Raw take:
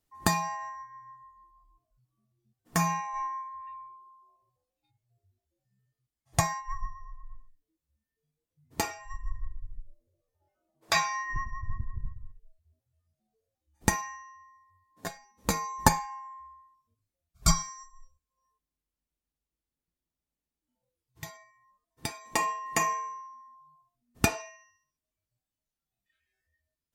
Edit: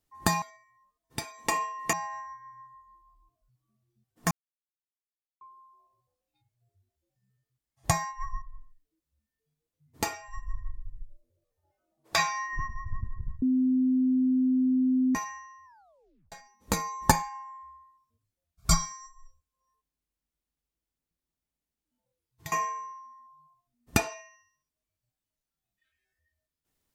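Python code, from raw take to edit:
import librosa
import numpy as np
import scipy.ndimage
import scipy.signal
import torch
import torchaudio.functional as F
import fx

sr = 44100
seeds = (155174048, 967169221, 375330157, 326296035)

y = fx.edit(x, sr, fx.silence(start_s=2.8, length_s=1.1),
    fx.cut(start_s=6.91, length_s=0.28),
    fx.bleep(start_s=12.19, length_s=1.73, hz=257.0, db=-21.0),
    fx.tape_stop(start_s=14.42, length_s=0.67),
    fx.move(start_s=21.29, length_s=1.51, to_s=0.42), tone=tone)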